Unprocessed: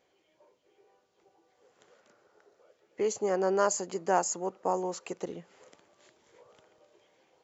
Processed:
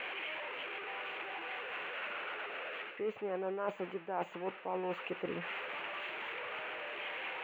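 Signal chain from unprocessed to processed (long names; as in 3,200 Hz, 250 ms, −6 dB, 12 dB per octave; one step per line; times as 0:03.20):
spike at every zero crossing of −20.5 dBFS
elliptic low-pass filter 2,700 Hz, stop band 50 dB
reversed playback
downward compressor 5 to 1, threshold −38 dBFS, peak gain reduction 16 dB
reversed playback
level +3 dB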